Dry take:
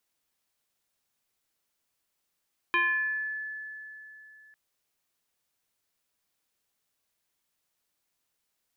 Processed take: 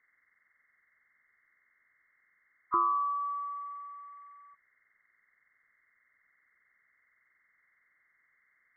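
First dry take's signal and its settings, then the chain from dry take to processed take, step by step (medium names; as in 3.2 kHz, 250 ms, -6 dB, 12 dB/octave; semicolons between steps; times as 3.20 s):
FM tone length 1.80 s, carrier 1.73 kHz, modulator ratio 0.4, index 1.4, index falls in 1.00 s exponential, decay 3.29 s, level -21 dB
knee-point frequency compression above 1 kHz 4:1; low-pass that closes with the level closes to 1.6 kHz, closed at -29 dBFS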